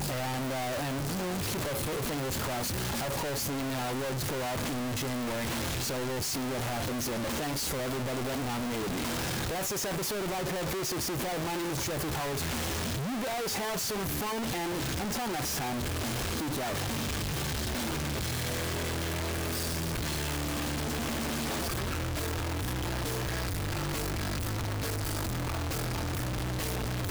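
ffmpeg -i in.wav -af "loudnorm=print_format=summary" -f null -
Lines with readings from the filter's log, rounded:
Input Integrated:    -32.2 LUFS
Input True Peak:     -26.5 dBTP
Input LRA:             1.3 LU
Input Threshold:     -42.2 LUFS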